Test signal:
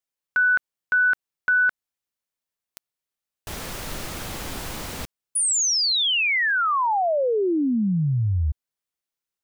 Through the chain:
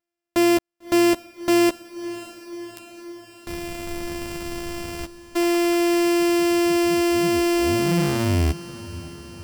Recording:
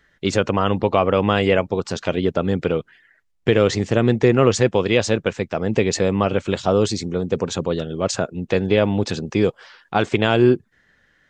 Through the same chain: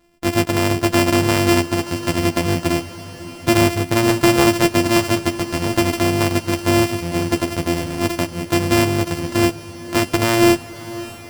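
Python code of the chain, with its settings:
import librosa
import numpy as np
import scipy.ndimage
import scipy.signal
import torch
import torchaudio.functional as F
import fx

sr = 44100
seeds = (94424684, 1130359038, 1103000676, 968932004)

y = np.r_[np.sort(x[:len(x) // 128 * 128].reshape(-1, 128), axis=1).ravel(), x[len(x) // 128 * 128:]]
y = fx.doubler(y, sr, ms=12.0, db=-6)
y = fx.echo_diffused(y, sr, ms=602, feedback_pct=67, wet_db=-16.0)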